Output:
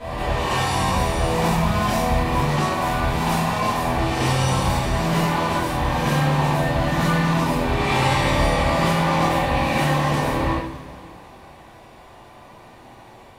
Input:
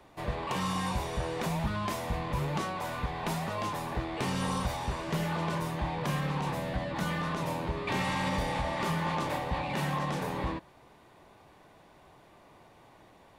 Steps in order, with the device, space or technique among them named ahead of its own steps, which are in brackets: reverse reverb (reverse; reverb RT60 1.3 s, pre-delay 67 ms, DRR 2.5 dB; reverse); two-slope reverb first 0.58 s, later 3.1 s, from -18 dB, DRR -10 dB

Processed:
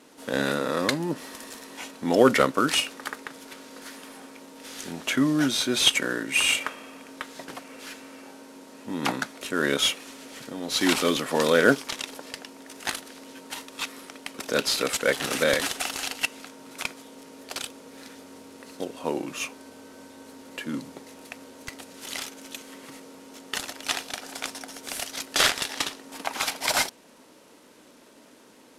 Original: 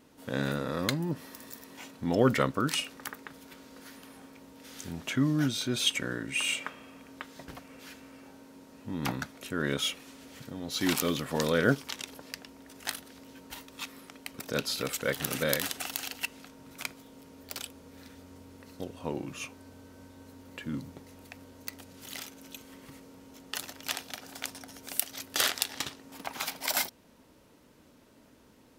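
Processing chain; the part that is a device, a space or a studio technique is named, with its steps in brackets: early wireless headset (HPF 270 Hz 12 dB/oct; CVSD 64 kbps); gain +8 dB

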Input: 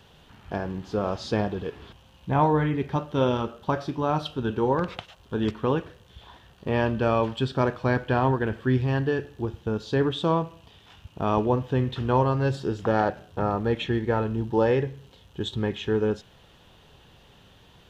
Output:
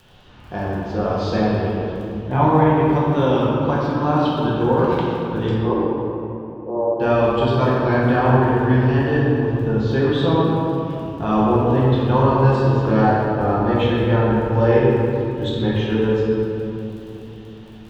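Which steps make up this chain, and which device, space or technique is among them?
lo-fi chain (LPF 6200 Hz 12 dB/oct; wow and flutter; crackle 20/s -38 dBFS); 5.5–7 Chebyshev band-pass 300–1100 Hz, order 5; shoebox room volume 120 m³, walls hard, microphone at 0.9 m; gain -1 dB

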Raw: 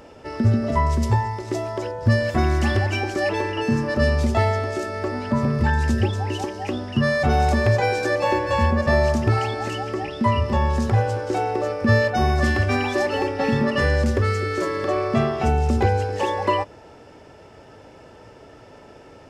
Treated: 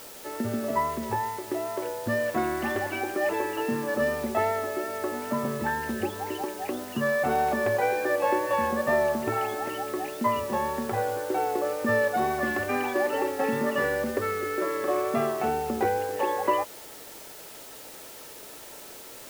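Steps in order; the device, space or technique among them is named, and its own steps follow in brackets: wax cylinder (BPF 280–2200 Hz; wow and flutter 27 cents; white noise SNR 17 dB); gain -3 dB

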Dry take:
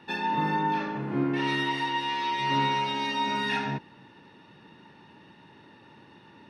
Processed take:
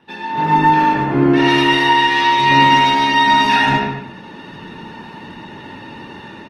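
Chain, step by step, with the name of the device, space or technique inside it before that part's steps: speakerphone in a meeting room (reverb RT60 0.60 s, pre-delay 76 ms, DRR 1.5 dB; speakerphone echo 0.14 s, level -9 dB; AGC gain up to 16 dB; Opus 20 kbps 48000 Hz)

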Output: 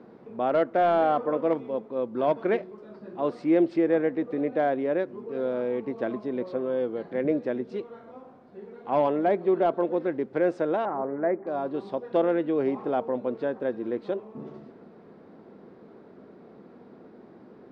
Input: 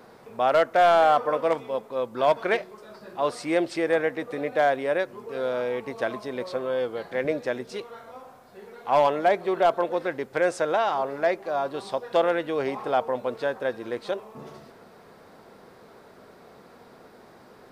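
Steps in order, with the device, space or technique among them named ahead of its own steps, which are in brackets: 10.85–11.47 steep low-pass 2100 Hz 48 dB/oct; inside a cardboard box (LPF 3400 Hz 12 dB/oct; small resonant body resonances 210/300 Hz, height 13 dB, ringing for 20 ms); gain -9 dB

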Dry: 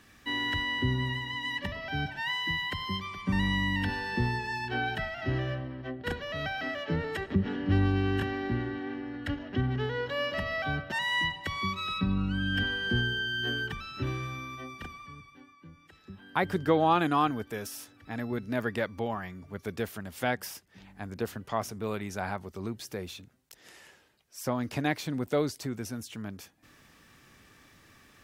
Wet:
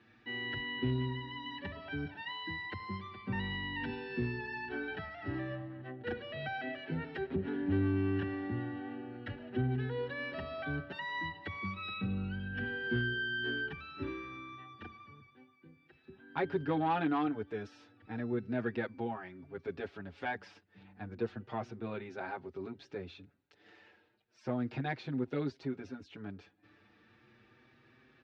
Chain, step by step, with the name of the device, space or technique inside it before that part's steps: barber-pole flanger into a guitar amplifier (endless flanger 6.2 ms +0.33 Hz; soft clip -21.5 dBFS, distortion -19 dB; speaker cabinet 100–3500 Hz, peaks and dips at 180 Hz -5 dB, 370 Hz +3 dB, 610 Hz -4 dB, 1100 Hz -7 dB, 2000 Hz -5 dB, 3100 Hz -6 dB)

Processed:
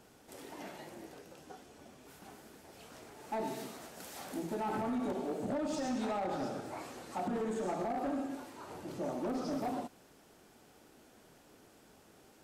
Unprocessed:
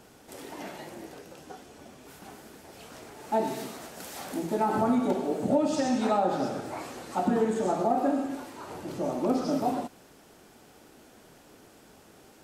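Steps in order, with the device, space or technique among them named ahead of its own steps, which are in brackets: limiter into clipper (limiter -19 dBFS, peak gain reduction 5.5 dB; hard clip -24.5 dBFS, distortion -15 dB); gain -6.5 dB

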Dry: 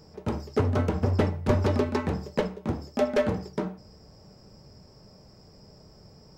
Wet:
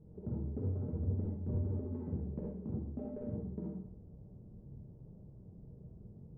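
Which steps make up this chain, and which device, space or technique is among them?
television next door (compressor 5:1, threshold -33 dBFS, peak gain reduction 14 dB; LPF 300 Hz 12 dB/oct; reverb RT60 0.60 s, pre-delay 40 ms, DRR -2.5 dB); gain -4 dB

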